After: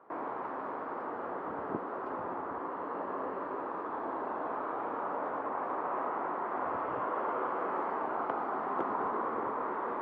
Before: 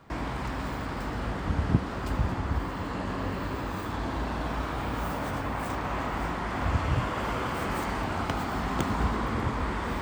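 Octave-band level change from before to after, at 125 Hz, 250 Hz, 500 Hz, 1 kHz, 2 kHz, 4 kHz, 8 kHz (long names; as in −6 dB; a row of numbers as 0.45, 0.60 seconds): −26.0 dB, −9.5 dB, −1.0 dB, −0.5 dB, −8.5 dB, below −20 dB, below −35 dB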